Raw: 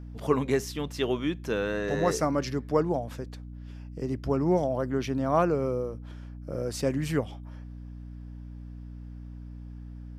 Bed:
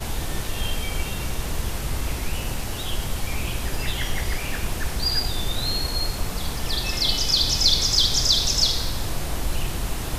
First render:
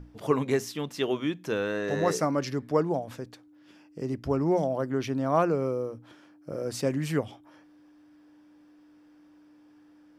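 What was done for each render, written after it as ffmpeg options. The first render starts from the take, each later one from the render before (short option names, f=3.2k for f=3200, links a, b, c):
-af "bandreject=f=60:t=h:w=6,bandreject=f=120:t=h:w=6,bandreject=f=180:t=h:w=6,bandreject=f=240:t=h:w=6"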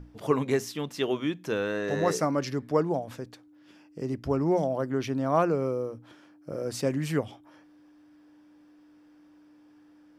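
-af anull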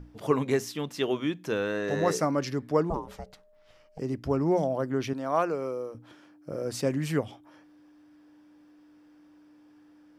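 -filter_complex "[0:a]asettb=1/sr,asplit=3[a][b][c];[a]atrim=end=2.904[d];[b]atrim=start=2.9:end=3.99,asetpts=PTS-STARTPTS,afade=t=in:d=0.004:c=qsin,afade=t=out:st=1.086:d=0.004:c=qsin,aeval=exprs='val(0)*sin(2*PI*310*n/s)':c=same[e];[c]atrim=start=3.986[f];[d][e]acrossfade=d=0.004:c1=hsin:c2=qsin[g];[g][f]acrossfade=d=0.004:c1=qsin:c2=hsin,asettb=1/sr,asplit=3[h][i][j];[h]atrim=end=5.134[k];[i]atrim=start=5.13:end=5.95,asetpts=PTS-STARTPTS,afade=t=in:d=0.004:c=qsin,afade=t=out:st=0.816:d=0.004:c=qsin,highpass=f=490:p=1[l];[j]atrim=start=5.946[m];[k][l]acrossfade=d=0.004:c1=hsin:c2=qsin[n];[n][m]acrossfade=d=0.004:c1=qsin:c2=hsin"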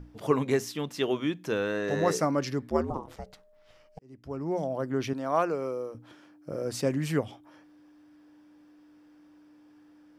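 -filter_complex "[0:a]asplit=3[a][b][c];[a]afade=t=out:st=2.69:d=0.02[d];[b]aeval=exprs='val(0)*sin(2*PI*78*n/s)':c=same,afade=t=in:st=2.69:d=0.02,afade=t=out:st=3.15:d=0.02[e];[c]afade=t=in:st=3.15:d=0.02[f];[d][e][f]amix=inputs=3:normalize=0,asplit=2[g][h];[g]atrim=end=3.99,asetpts=PTS-STARTPTS,afade=t=out:st=3.986:d=0.004:c=hsin[i];[h]atrim=start=3.99,asetpts=PTS-STARTPTS,afade=t=in:d=1.04[j];[i][j]concat=n=2:v=0:a=1"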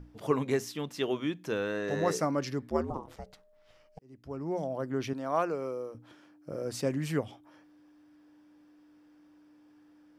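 -af "volume=-3dB"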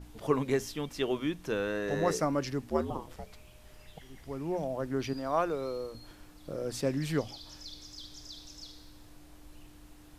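-filter_complex "[1:a]volume=-28dB[a];[0:a][a]amix=inputs=2:normalize=0"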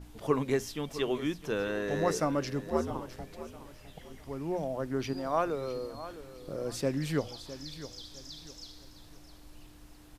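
-af "aecho=1:1:658|1316|1974:0.2|0.0638|0.0204"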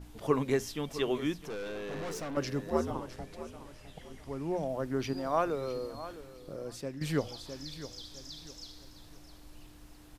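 -filter_complex "[0:a]asettb=1/sr,asplit=3[a][b][c];[a]atrim=end=1.444[d];[b]atrim=start=1.44:end=2.37,asetpts=PTS-STARTPTS,afade=t=in:d=0.004:c=qsin,afade=t=out:st=0.926:d=0.004:c=qsin,aeval=exprs='(tanh(63.1*val(0)+0.3)-tanh(0.3))/63.1':c=same[e];[c]atrim=start=2.366[f];[d][e]acrossfade=d=0.004:c1=hsin:c2=qsin[g];[g][f]acrossfade=d=0.004:c1=qsin:c2=hsin,asettb=1/sr,asplit=3[h][i][j];[h]atrim=end=2.924[k];[i]atrim=start=2.92:end=4.69,asetpts=PTS-STARTPTS,afade=t=in:d=0.004:c=qsin,afade=t=out:st=1.766:d=0.004:c=qsin,lowpass=f=12k:w=0.5412,lowpass=f=12k:w=1.3066[l];[j]atrim=start=4.686[m];[k][l]acrossfade=d=0.004:c1=hsin:c2=qsin[n];[n][m]acrossfade=d=0.004:c1=qsin:c2=hsin,asplit=2[o][p];[o]atrim=end=7.01,asetpts=PTS-STARTPTS,afade=t=out:st=6.05:d=0.96:silence=0.266073[q];[p]atrim=start=7.01,asetpts=PTS-STARTPTS,afade=t=in:d=0.004:c=hsin:silence=0.266073[r];[q][r]concat=n=2:v=0:a=1"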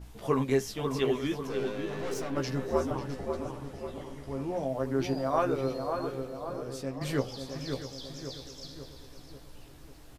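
-filter_complex "[0:a]asplit=2[a][b];[b]adelay=15,volume=-4.5dB[c];[a][c]amix=inputs=2:normalize=0,asplit=2[d][e];[e]adelay=543,lowpass=f=1.7k:p=1,volume=-5.5dB,asplit=2[f][g];[g]adelay=543,lowpass=f=1.7k:p=1,volume=0.54,asplit=2[h][i];[i]adelay=543,lowpass=f=1.7k:p=1,volume=0.54,asplit=2[j][k];[k]adelay=543,lowpass=f=1.7k:p=1,volume=0.54,asplit=2[l][m];[m]adelay=543,lowpass=f=1.7k:p=1,volume=0.54,asplit=2[n][o];[o]adelay=543,lowpass=f=1.7k:p=1,volume=0.54,asplit=2[p][q];[q]adelay=543,lowpass=f=1.7k:p=1,volume=0.54[r];[d][f][h][j][l][n][p][r]amix=inputs=8:normalize=0"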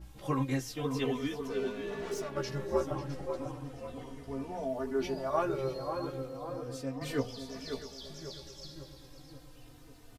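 -filter_complex "[0:a]asplit=2[a][b];[b]adelay=3.2,afreqshift=-0.34[c];[a][c]amix=inputs=2:normalize=1"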